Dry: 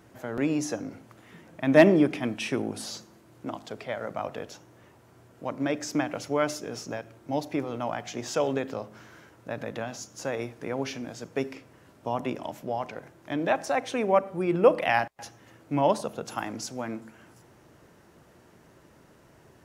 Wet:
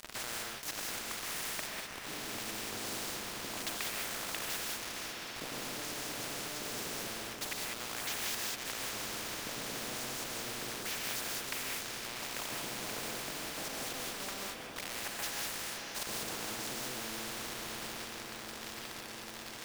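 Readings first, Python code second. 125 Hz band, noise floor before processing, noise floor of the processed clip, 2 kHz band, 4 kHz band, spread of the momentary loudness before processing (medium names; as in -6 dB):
-14.5 dB, -57 dBFS, -45 dBFS, -5.0 dB, +4.0 dB, 17 LU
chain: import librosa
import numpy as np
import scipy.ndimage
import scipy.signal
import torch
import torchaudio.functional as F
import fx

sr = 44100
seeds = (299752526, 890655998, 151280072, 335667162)

y = fx.high_shelf(x, sr, hz=6700.0, db=-8.0)
y = fx.over_compress(y, sr, threshold_db=-41.0, ratio=-1.0)
y = fx.filter_lfo_bandpass(y, sr, shape='square', hz=0.28, low_hz=330.0, high_hz=2000.0, q=1.3)
y = np.where(np.abs(y) >= 10.0 ** (-49.5 / 20.0), y, 0.0)
y = fx.echo_diffused(y, sr, ms=597, feedback_pct=61, wet_db=-15.0)
y = fx.rev_gated(y, sr, seeds[0], gate_ms=220, shape='rising', drr_db=-2.0)
y = fx.spectral_comp(y, sr, ratio=4.0)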